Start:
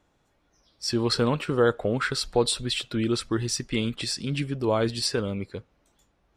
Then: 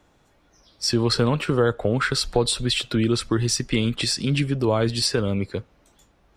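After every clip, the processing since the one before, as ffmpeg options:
ffmpeg -i in.wav -filter_complex "[0:a]acrossover=split=130[link_01][link_02];[link_02]acompressor=threshold=-30dB:ratio=2[link_03];[link_01][link_03]amix=inputs=2:normalize=0,volume=8dB" out.wav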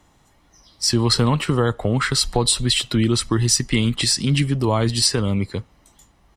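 ffmpeg -i in.wav -af "equalizer=frequency=10000:width_type=o:width=1.5:gain=6,aecho=1:1:1:0.38,volume=2dB" out.wav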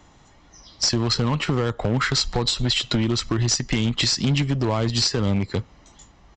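ffmpeg -i in.wav -af "acompressor=threshold=-24dB:ratio=6,aeval=exprs='0.251*(cos(1*acos(clip(val(0)/0.251,-1,1)))-cos(1*PI/2))+0.0141*(cos(7*acos(clip(val(0)/0.251,-1,1)))-cos(7*PI/2))':channel_layout=same,aresample=16000,asoftclip=type=hard:threshold=-24dB,aresample=44100,volume=9dB" out.wav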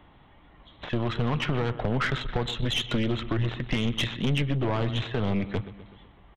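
ffmpeg -i in.wav -af "aresample=8000,aresample=44100,aecho=1:1:126|252|378|504|630:0.158|0.0856|0.0462|0.025|0.0135,aeval=exprs='(tanh(10*val(0)+0.5)-tanh(0.5))/10':channel_layout=same" out.wav

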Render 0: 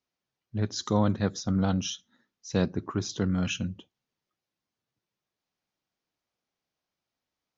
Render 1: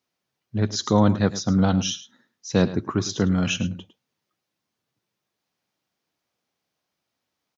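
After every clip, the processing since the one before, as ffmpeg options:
ffmpeg -i in.wav -af "highpass=81,aecho=1:1:106:0.178,volume=6.5dB" out.wav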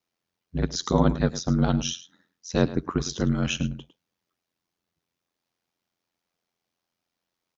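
ffmpeg -i in.wav -af "aeval=exprs='val(0)*sin(2*PI*43*n/s)':channel_layout=same" out.wav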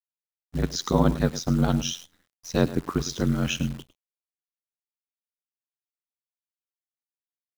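ffmpeg -i in.wav -af "acrusher=bits=8:dc=4:mix=0:aa=0.000001" out.wav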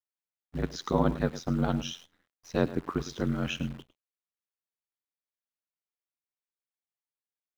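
ffmpeg -i in.wav -af "bass=frequency=250:gain=-4,treble=frequency=4000:gain=-11,volume=-3dB" out.wav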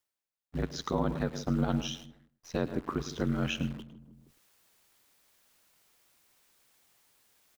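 ffmpeg -i in.wav -filter_complex "[0:a]asplit=2[link_01][link_02];[link_02]adelay=157,lowpass=frequency=810:poles=1,volume=-16dB,asplit=2[link_03][link_04];[link_04]adelay=157,lowpass=frequency=810:poles=1,volume=0.36,asplit=2[link_05][link_06];[link_06]adelay=157,lowpass=frequency=810:poles=1,volume=0.36[link_07];[link_01][link_03][link_05][link_07]amix=inputs=4:normalize=0,areverse,acompressor=mode=upward:threshold=-44dB:ratio=2.5,areverse,alimiter=limit=-18.5dB:level=0:latency=1:release=112" out.wav

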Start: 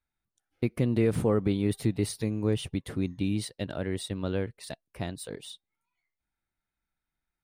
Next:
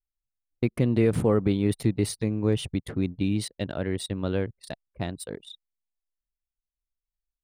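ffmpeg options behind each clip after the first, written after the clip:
ffmpeg -i in.wav -af "anlmdn=0.251,volume=3dB" out.wav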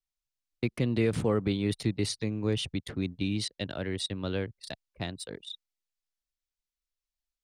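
ffmpeg -i in.wav -filter_complex "[0:a]acrossover=split=100|690|6200[link_01][link_02][link_03][link_04];[link_03]crystalizer=i=4.5:c=0[link_05];[link_04]acompressor=threshold=-50dB:ratio=6[link_06];[link_01][link_02][link_05][link_06]amix=inputs=4:normalize=0,volume=-5dB" out.wav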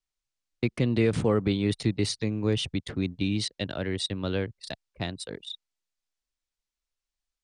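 ffmpeg -i in.wav -af "lowpass=frequency=9200:width=0.5412,lowpass=frequency=9200:width=1.3066,volume=3dB" out.wav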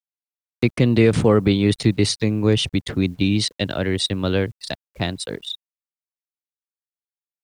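ffmpeg -i in.wav -af "acrusher=bits=10:mix=0:aa=0.000001,acompressor=mode=upward:threshold=-39dB:ratio=2.5,volume=8.5dB" out.wav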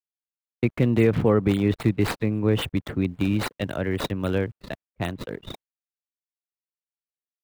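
ffmpeg -i in.wav -filter_complex "[0:a]agate=range=-33dB:threshold=-33dB:ratio=3:detection=peak,acrossover=split=3100[link_01][link_02];[link_02]acrusher=samples=33:mix=1:aa=0.000001:lfo=1:lforange=52.8:lforate=3.7[link_03];[link_01][link_03]amix=inputs=2:normalize=0,volume=-4dB" out.wav

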